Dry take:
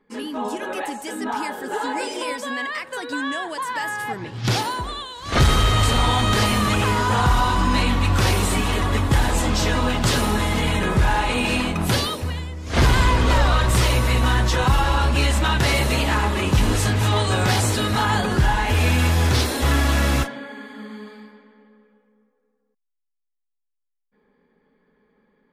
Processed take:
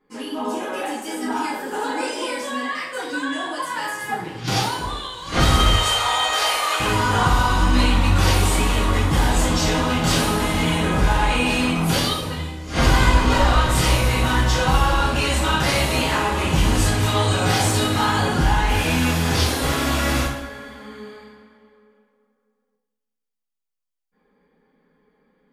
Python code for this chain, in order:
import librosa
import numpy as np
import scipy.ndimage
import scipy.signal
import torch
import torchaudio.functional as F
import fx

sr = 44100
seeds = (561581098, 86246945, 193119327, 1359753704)

y = fx.highpass(x, sr, hz=530.0, slope=24, at=(5.73, 6.8))
y = fx.rev_double_slope(y, sr, seeds[0], early_s=0.56, late_s=1.9, knee_db=-18, drr_db=-7.0)
y = y * librosa.db_to_amplitude(-6.5)